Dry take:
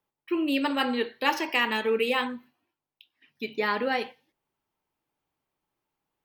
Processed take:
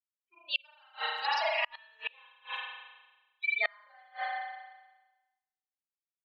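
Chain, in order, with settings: per-bin expansion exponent 3; vibrato 8.1 Hz 45 cents; Chebyshev band-pass 650–4900 Hz, order 5; high shelf 3100 Hz +6 dB; speakerphone echo 0.38 s, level -26 dB; negative-ratio compressor -32 dBFS, ratio -0.5; gate -56 dBFS, range -10 dB; spring tank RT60 1.2 s, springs 34 ms, chirp 55 ms, DRR -9.5 dB; flipped gate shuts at -20 dBFS, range -35 dB; gain +3 dB

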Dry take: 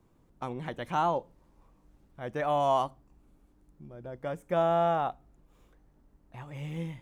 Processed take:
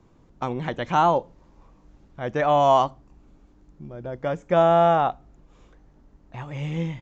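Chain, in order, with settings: downsampling 16000 Hz; gain +8.5 dB

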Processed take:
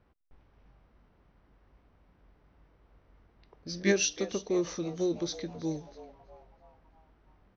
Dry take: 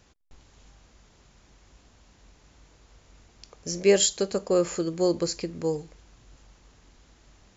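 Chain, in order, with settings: formant shift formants -3 st; frequency-shifting echo 0.325 s, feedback 51%, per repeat +120 Hz, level -16.5 dB; low-pass opened by the level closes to 1500 Hz, open at -25.5 dBFS; gain -6 dB

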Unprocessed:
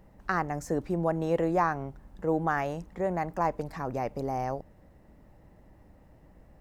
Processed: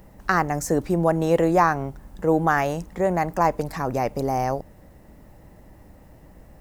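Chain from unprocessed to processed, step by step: high shelf 5600 Hz +10 dB; gain +7.5 dB

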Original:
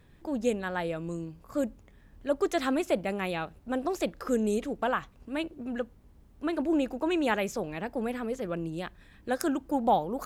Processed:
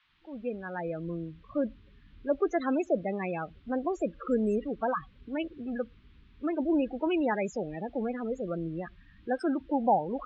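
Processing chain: opening faded in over 1.06 s; loudest bins only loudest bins 16; band noise 980–3700 Hz -71 dBFS

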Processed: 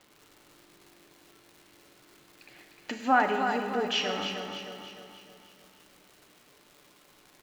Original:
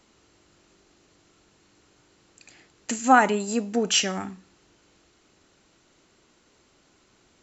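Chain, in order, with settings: LPF 4100 Hz 24 dB/oct; low shelf 130 Hz -9.5 dB; comb 6.8 ms, depth 34%; in parallel at +1.5 dB: compressor, threshold -34 dBFS, peak gain reduction 21 dB; on the sum: resonator 560 Hz, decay 0.4 s, mix 60%; crackle 290/s -45 dBFS; feedback echo 0.305 s, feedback 48%, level -7 dB; Schroeder reverb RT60 2.1 s, combs from 29 ms, DRR 6.5 dB

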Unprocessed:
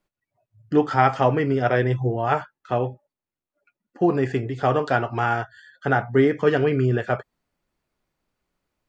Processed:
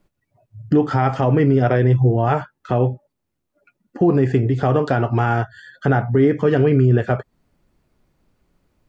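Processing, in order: low shelf 450 Hz +11 dB; compressor 1.5:1, threshold -29 dBFS, peak gain reduction 8.5 dB; limiter -13 dBFS, peak gain reduction 6 dB; gain +6.5 dB

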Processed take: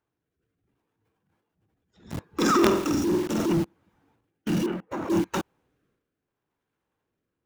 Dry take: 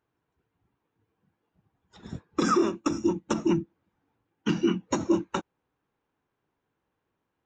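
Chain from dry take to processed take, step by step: 2.26–3.53 flutter echo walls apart 8 m, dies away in 0.41 s; transient shaper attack -7 dB, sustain +9 dB; rotary speaker horn 0.7 Hz; in parallel at -5.5 dB: companded quantiser 2-bit; 4.66–5.1 on the sum: three-band isolator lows -12 dB, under 360 Hz, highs -20 dB, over 2300 Hz

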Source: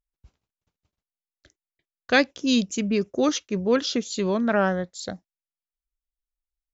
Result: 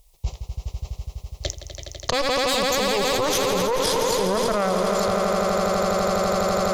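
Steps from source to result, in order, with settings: fixed phaser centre 630 Hz, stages 4; added harmonics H 3 -15 dB, 4 -16 dB, 8 -26 dB, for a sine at -9.5 dBFS; swelling echo 83 ms, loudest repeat 5, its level -11 dB; fast leveller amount 100%

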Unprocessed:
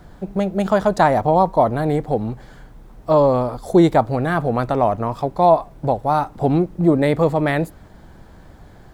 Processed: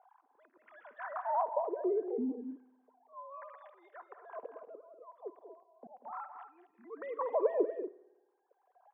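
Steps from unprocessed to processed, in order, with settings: sine-wave speech; compressor, threshold -15 dBFS, peak gain reduction 11 dB; limiter -18 dBFS, peak gain reduction 11 dB; small resonant body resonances 450/1000 Hz, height 10 dB, ringing for 35 ms; auto swell 0.66 s; wah 0.34 Hz 240–1900 Hz, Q 3.8; on a send: loudspeakers at several distances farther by 65 m -11 dB, 82 m -11 dB; on the sum: spring tank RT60 1.1 s, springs 55 ms, chirp 60 ms, DRR 19 dB; gain -4.5 dB

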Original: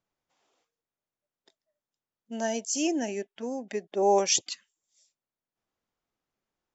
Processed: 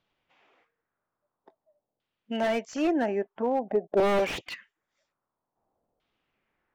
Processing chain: dynamic EQ 260 Hz, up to -4 dB, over -41 dBFS, Q 1.2; in parallel at -3 dB: compressor 5:1, threshold -35 dBFS, peak gain reduction 14.5 dB; on the sum: wavefolder -20.5 dBFS; LFO low-pass saw down 0.5 Hz 600–3500 Hz; slew limiter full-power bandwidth 44 Hz; gain +3 dB

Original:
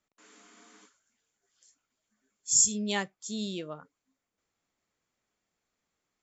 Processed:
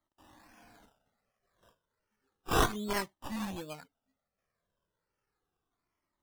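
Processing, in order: tracing distortion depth 0.37 ms; decimation with a swept rate 16×, swing 60% 1.3 Hz; cascading flanger falling 0.33 Hz; gain +2.5 dB

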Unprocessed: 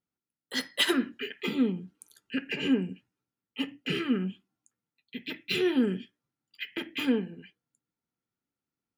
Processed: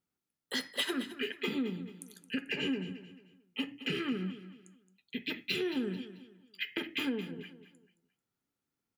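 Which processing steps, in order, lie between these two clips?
compressor, threshold -33 dBFS, peak gain reduction 13 dB; resonator 420 Hz, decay 0.3 s, harmonics all, mix 50%; on a send: feedback echo 0.22 s, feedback 33%, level -13.5 dB; on the sum: gain +7.5 dB

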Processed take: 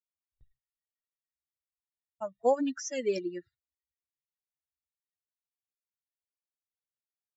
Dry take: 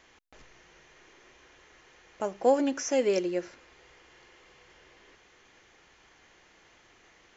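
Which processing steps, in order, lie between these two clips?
per-bin expansion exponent 3; gate with hold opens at -58 dBFS

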